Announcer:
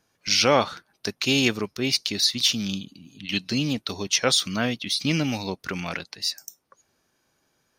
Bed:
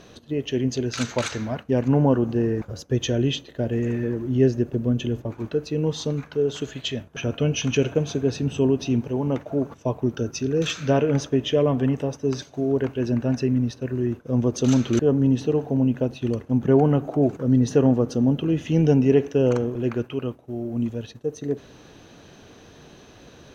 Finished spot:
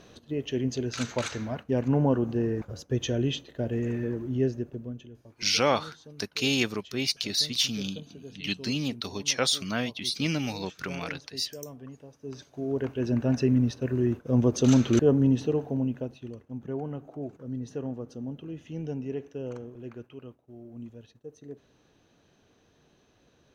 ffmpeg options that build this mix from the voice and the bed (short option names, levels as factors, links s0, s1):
-filter_complex "[0:a]adelay=5150,volume=0.596[s0];[1:a]volume=6.68,afade=t=out:st=4.14:d=0.94:silence=0.133352,afade=t=in:st=12.13:d=1.35:silence=0.0841395,afade=t=out:st=14.98:d=1.33:silence=0.16788[s1];[s0][s1]amix=inputs=2:normalize=0"